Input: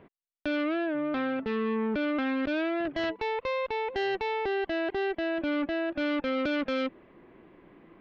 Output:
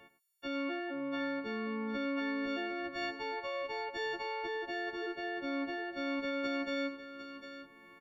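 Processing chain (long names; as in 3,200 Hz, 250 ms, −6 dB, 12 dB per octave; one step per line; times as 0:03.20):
every partial snapped to a pitch grid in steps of 4 semitones
multi-tap delay 50/101/754/784 ms −19.5/−14/−11/−17 dB
one half of a high-frequency compander encoder only
level −9 dB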